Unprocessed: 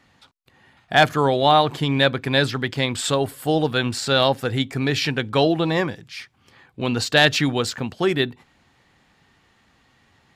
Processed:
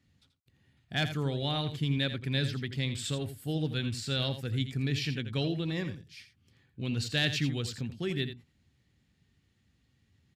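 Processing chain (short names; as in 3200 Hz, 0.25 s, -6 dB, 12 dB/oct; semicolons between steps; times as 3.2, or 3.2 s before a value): HPF 71 Hz; passive tone stack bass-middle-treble 10-0-1; echo 84 ms -10.5 dB; dynamic EQ 2400 Hz, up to +5 dB, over -58 dBFS, Q 0.74; gain +7.5 dB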